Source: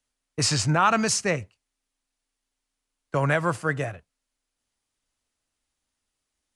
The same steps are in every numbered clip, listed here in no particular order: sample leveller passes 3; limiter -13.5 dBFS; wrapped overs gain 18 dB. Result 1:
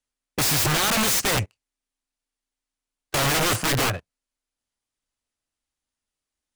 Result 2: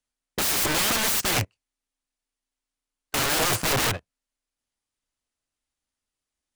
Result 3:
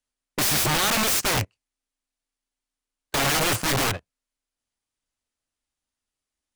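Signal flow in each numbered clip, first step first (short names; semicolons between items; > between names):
limiter > sample leveller > wrapped overs; sample leveller > wrapped overs > limiter; sample leveller > limiter > wrapped overs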